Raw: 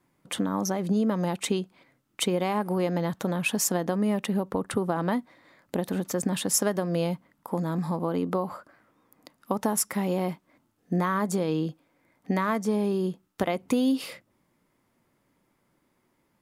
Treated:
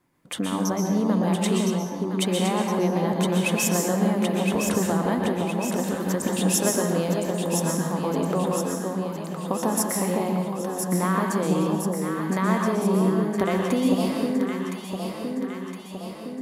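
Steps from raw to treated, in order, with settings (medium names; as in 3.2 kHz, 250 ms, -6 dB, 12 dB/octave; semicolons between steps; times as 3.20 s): on a send: echo whose repeats swap between lows and highs 507 ms, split 1 kHz, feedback 76%, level -3 dB; on the sum: plate-style reverb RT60 0.74 s, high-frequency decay 0.95×, pre-delay 110 ms, DRR 1.5 dB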